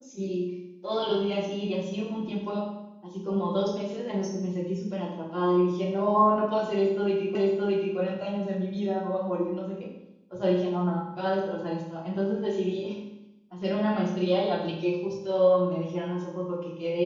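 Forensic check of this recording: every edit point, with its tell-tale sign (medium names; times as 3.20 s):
7.35 s: repeat of the last 0.62 s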